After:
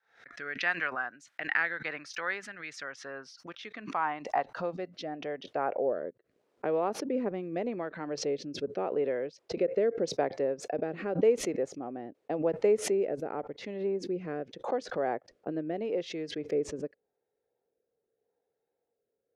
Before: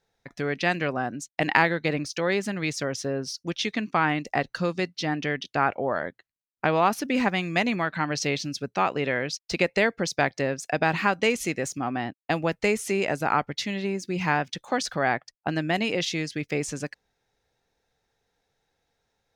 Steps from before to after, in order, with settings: band-pass sweep 1500 Hz -> 460 Hz, 2.9–6.01; rotary speaker horn 0.85 Hz; backwards sustainer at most 120 dB/s; gain +2.5 dB

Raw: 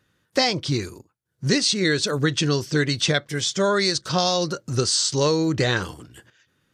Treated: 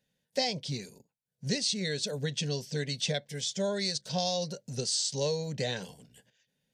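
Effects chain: fixed phaser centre 330 Hz, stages 6; gain -8 dB

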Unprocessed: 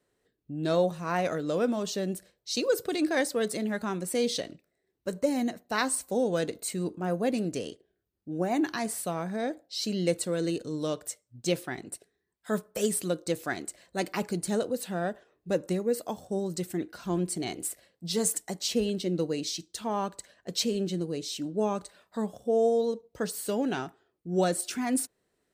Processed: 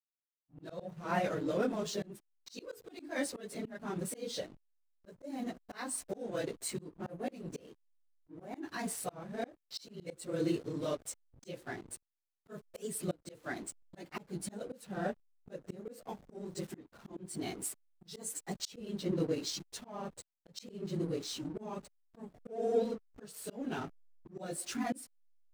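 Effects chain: phase scrambler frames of 50 ms; backlash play -38.5 dBFS; auto swell 0.343 s; gain -3.5 dB

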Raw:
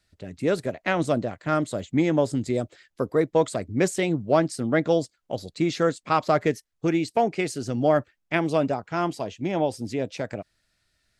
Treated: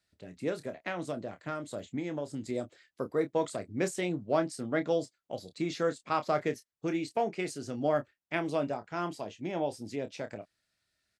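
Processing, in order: HPF 140 Hz 6 dB/oct; 0.49–2.51 compressor, threshold -24 dBFS, peak gain reduction 8 dB; doubler 28 ms -9.5 dB; gain -8 dB

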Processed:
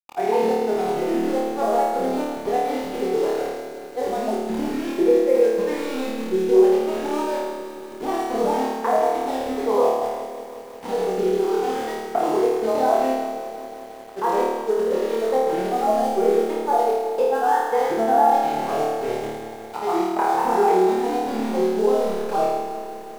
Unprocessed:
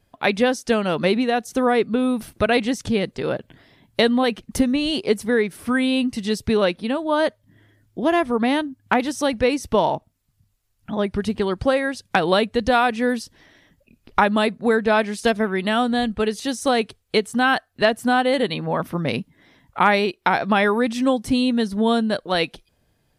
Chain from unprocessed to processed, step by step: in parallel at -0.5 dB: limiter -13 dBFS, peak gain reduction 8.5 dB; on the sum: compressor 2:1, threshold -21 dBFS, peak gain reduction 7.5 dB; double band-pass 570 Hz, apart 0.8 oct; sample gate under -37.5 dBFS; grains, pitch spread up and down by 3 st; flutter echo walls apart 4.6 m, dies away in 1.2 s; on a send at -17.5 dB: reverb RT60 0.40 s, pre-delay 14 ms; on the sum: lo-fi delay 0.179 s, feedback 80%, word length 8-bit, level -12.5 dB; gain +4 dB

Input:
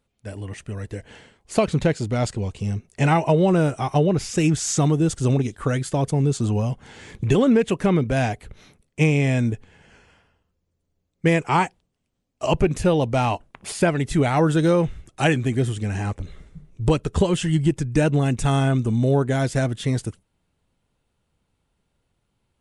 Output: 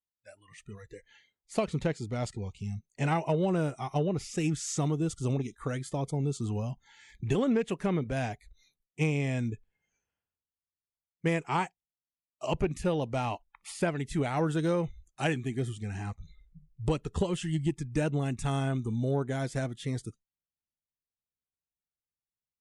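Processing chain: spectral noise reduction 23 dB; added harmonics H 3 -25 dB, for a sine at -7 dBFS; gain -9 dB

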